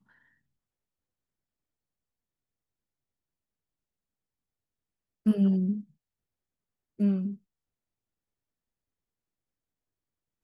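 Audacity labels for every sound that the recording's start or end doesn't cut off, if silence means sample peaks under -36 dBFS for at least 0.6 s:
5.260000	5.810000	sound
7.000000	7.340000	sound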